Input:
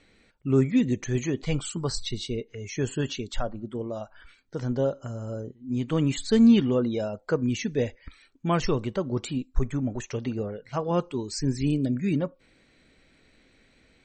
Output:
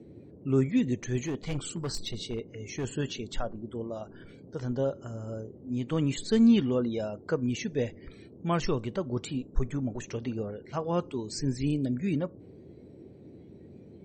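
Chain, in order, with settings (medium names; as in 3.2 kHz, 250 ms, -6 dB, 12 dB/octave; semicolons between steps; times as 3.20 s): spectral noise reduction 11 dB; band noise 73–420 Hz -46 dBFS; 1.22–2.85 s: overload inside the chain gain 24 dB; trim -3.5 dB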